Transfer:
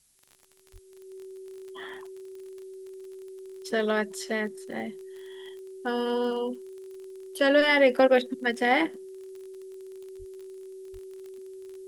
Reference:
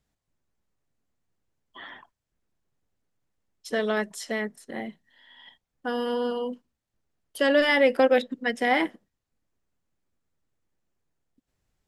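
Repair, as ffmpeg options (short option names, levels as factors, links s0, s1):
-filter_complex "[0:a]adeclick=t=4,bandreject=f=380:w=30,asplit=3[s0][s1][s2];[s0]afade=t=out:st=0.72:d=0.02[s3];[s1]highpass=f=140:w=0.5412,highpass=f=140:w=1.3066,afade=t=in:st=0.72:d=0.02,afade=t=out:st=0.84:d=0.02[s4];[s2]afade=t=in:st=0.84:d=0.02[s5];[s3][s4][s5]amix=inputs=3:normalize=0,asplit=3[s6][s7][s8];[s6]afade=t=out:st=10.18:d=0.02[s9];[s7]highpass=f=140:w=0.5412,highpass=f=140:w=1.3066,afade=t=in:st=10.18:d=0.02,afade=t=out:st=10.3:d=0.02[s10];[s8]afade=t=in:st=10.3:d=0.02[s11];[s9][s10][s11]amix=inputs=3:normalize=0,asplit=3[s12][s13][s14];[s12]afade=t=out:st=10.92:d=0.02[s15];[s13]highpass=f=140:w=0.5412,highpass=f=140:w=1.3066,afade=t=in:st=10.92:d=0.02,afade=t=out:st=11.04:d=0.02[s16];[s14]afade=t=in:st=11.04:d=0.02[s17];[s15][s16][s17]amix=inputs=3:normalize=0,agate=range=0.0891:threshold=0.0178"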